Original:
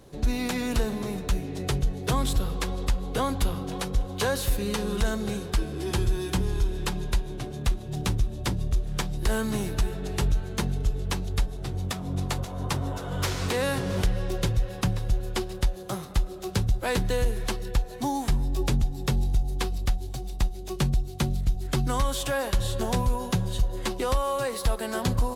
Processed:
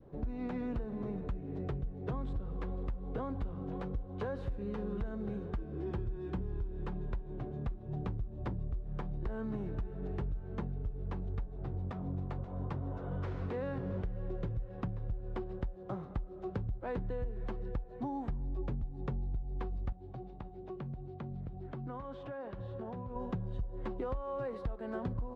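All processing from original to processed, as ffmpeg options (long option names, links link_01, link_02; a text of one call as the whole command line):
ffmpeg -i in.wav -filter_complex "[0:a]asettb=1/sr,asplit=3[link_01][link_02][link_03];[link_01]atrim=end=19.924[link_04];[link_02]atrim=start=19.92:end=23.16,asetpts=PTS-STARTPTS,afade=type=in:duration=0.004:curve=qsin,afade=type=out:start_time=3.236:duration=0.004:curve=qsin,highpass=100,lowpass=4700,acompressor=threshold=-33dB:ratio=6:attack=3.2:release=140:knee=1:detection=peak[link_05];[link_03]atrim=start=23.156[link_06];[link_04][link_05]acrossfade=duration=0.004:curve1=hsin:curve2=qsin[link_07];[link_07][link_06]acrossfade=duration=0.004:curve1=qsin:curve2=hsin,lowpass=1100,adynamicequalizer=threshold=0.00562:dfrequency=860:dqfactor=1.2:tfrequency=860:tqfactor=1.2:attack=5:release=100:ratio=0.375:range=2:mode=cutabove:tftype=bell,acompressor=threshold=-29dB:ratio=6,volume=-4.5dB" out.wav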